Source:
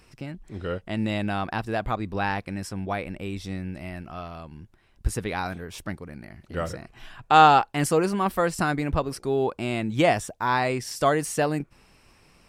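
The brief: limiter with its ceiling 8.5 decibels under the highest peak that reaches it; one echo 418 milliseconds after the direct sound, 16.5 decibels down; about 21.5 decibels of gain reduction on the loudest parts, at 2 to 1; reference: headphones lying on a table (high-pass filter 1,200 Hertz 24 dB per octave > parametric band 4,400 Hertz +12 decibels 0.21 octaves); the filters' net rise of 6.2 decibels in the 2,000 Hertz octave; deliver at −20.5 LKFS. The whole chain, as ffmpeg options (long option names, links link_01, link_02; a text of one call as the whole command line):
ffmpeg -i in.wav -af "equalizer=frequency=2000:width_type=o:gain=8.5,acompressor=threshold=-49dB:ratio=2,alimiter=level_in=4.5dB:limit=-24dB:level=0:latency=1,volume=-4.5dB,highpass=frequency=1200:width=0.5412,highpass=frequency=1200:width=1.3066,equalizer=frequency=4400:width_type=o:width=0.21:gain=12,aecho=1:1:418:0.15,volume=25dB" out.wav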